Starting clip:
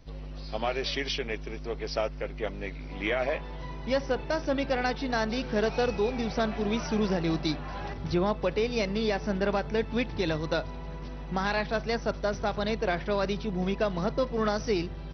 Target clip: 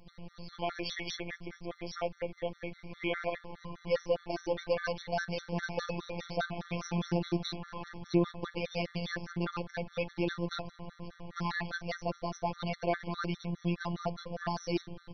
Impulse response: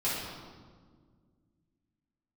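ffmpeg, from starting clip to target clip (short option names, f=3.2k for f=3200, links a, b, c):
-af "acontrast=27,afftfilt=real='hypot(re,im)*cos(PI*b)':imag='0':win_size=1024:overlap=0.75,afftfilt=real='re*gt(sin(2*PI*4.9*pts/sr)*(1-2*mod(floor(b*sr/1024/1100),2)),0)':imag='im*gt(sin(2*PI*4.9*pts/sr)*(1-2*mod(floor(b*sr/1024/1100),2)),0)':win_size=1024:overlap=0.75,volume=-4dB"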